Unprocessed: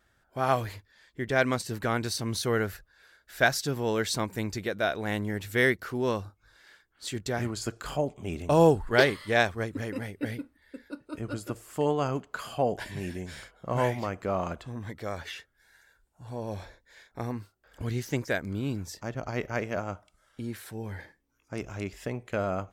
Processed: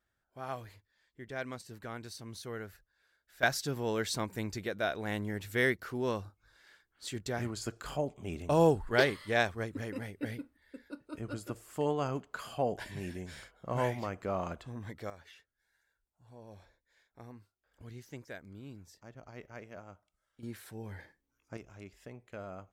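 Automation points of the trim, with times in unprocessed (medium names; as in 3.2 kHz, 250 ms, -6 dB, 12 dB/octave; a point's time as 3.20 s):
-14.5 dB
from 3.43 s -5 dB
from 15.10 s -16.5 dB
from 20.43 s -6.5 dB
from 21.57 s -14.5 dB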